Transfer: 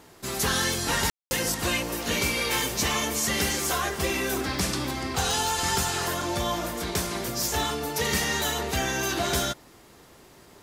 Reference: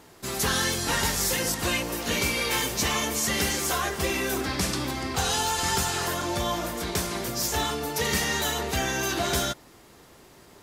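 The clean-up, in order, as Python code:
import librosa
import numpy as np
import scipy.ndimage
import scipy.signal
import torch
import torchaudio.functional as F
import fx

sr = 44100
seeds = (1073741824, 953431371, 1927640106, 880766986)

y = fx.fix_declip(x, sr, threshold_db=-14.5)
y = fx.fix_declick_ar(y, sr, threshold=10.0)
y = fx.fix_ambience(y, sr, seeds[0], print_start_s=9.6, print_end_s=10.1, start_s=1.1, end_s=1.31)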